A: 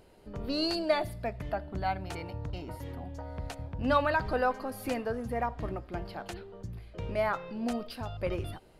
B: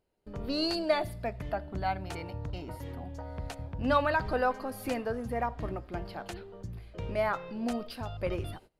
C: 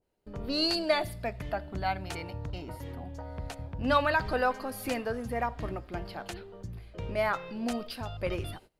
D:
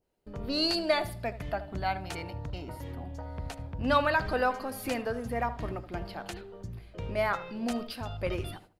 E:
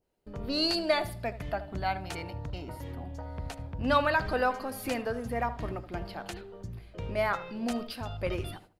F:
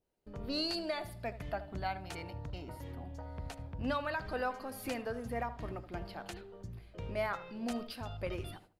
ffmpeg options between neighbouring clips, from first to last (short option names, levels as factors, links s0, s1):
-af "agate=range=0.0891:threshold=0.00282:ratio=16:detection=peak"
-af "adynamicequalizer=threshold=0.00794:dfrequency=1500:dqfactor=0.7:tfrequency=1500:tqfactor=0.7:attack=5:release=100:ratio=0.375:range=2.5:mode=boostabove:tftype=highshelf"
-filter_complex "[0:a]asplit=2[s0][s1];[s1]adelay=76,lowpass=f=1400:p=1,volume=0.224,asplit=2[s2][s3];[s3]adelay=76,lowpass=f=1400:p=1,volume=0.32,asplit=2[s4][s5];[s5]adelay=76,lowpass=f=1400:p=1,volume=0.32[s6];[s0][s2][s4][s6]amix=inputs=4:normalize=0"
-af anull
-af "alimiter=limit=0.1:level=0:latency=1:release=400,volume=0.562"